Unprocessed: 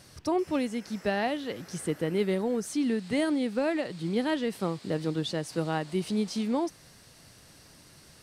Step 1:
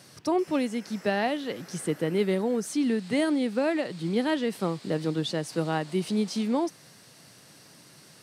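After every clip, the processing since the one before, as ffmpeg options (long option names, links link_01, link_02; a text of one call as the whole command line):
ffmpeg -i in.wav -af "highpass=frequency=120:width=0.5412,highpass=frequency=120:width=1.3066,volume=2dB" out.wav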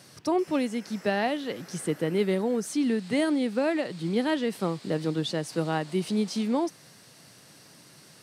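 ffmpeg -i in.wav -af anull out.wav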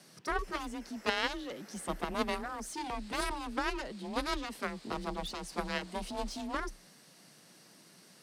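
ffmpeg -i in.wav -af "aeval=exprs='0.251*(cos(1*acos(clip(val(0)/0.251,-1,1)))-cos(1*PI/2))+0.0794*(cos(3*acos(clip(val(0)/0.251,-1,1)))-cos(3*PI/2))+0.02*(cos(7*acos(clip(val(0)/0.251,-1,1)))-cos(7*PI/2))':channel_layout=same,afreqshift=31" out.wav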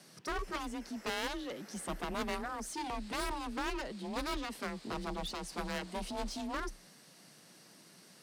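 ffmpeg -i in.wav -af "asoftclip=type=hard:threshold=-32dB" out.wav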